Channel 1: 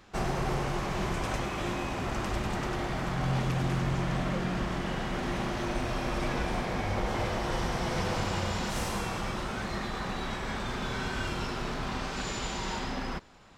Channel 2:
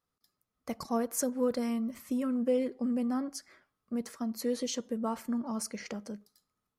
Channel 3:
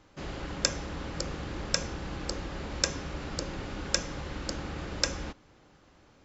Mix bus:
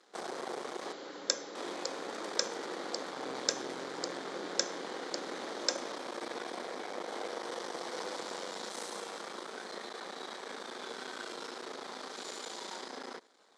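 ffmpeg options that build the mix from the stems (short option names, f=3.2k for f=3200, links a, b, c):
-filter_complex "[0:a]aeval=exprs='max(val(0),0)':c=same,volume=-4dB,asplit=3[a][b][c];[a]atrim=end=0.93,asetpts=PTS-STARTPTS,afade=t=out:st=0.926:d=0.004:c=hsin[d];[b]atrim=start=0.93:end=1.55,asetpts=PTS-STARTPTS,volume=0[e];[c]atrim=start=1.55,asetpts=PTS-STARTPTS,afade=t=in:d=0.004:c=hsin[f];[d][e][f]concat=n=3:v=0:a=1[g];[2:a]adelay=650,volume=-5.5dB[h];[g][h]amix=inputs=2:normalize=0,aexciter=amount=1.7:drive=1.6:freq=3.4k,highpass=f=280:w=0.5412,highpass=f=280:w=1.3066,equalizer=f=470:t=q:w=4:g=6,equalizer=f=2.7k:t=q:w=4:g=-8,equalizer=f=6.1k:t=q:w=4:g=7,lowpass=f=9.1k:w=0.5412,lowpass=f=9.1k:w=1.3066"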